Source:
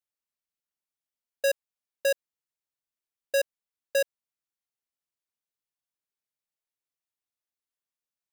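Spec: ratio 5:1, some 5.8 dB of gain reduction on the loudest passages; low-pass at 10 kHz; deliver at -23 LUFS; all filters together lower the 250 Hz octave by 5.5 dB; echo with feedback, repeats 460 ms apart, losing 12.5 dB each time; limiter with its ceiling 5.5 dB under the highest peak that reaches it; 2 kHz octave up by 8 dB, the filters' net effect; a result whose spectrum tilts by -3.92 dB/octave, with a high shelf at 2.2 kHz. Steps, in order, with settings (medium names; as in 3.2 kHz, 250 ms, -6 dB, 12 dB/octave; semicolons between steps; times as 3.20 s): low-pass 10 kHz; peaking EQ 250 Hz -8.5 dB; peaking EQ 2 kHz +7 dB; treble shelf 2.2 kHz +7.5 dB; compression 5:1, threshold -22 dBFS; peak limiter -15.5 dBFS; feedback delay 460 ms, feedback 24%, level -12.5 dB; trim +11.5 dB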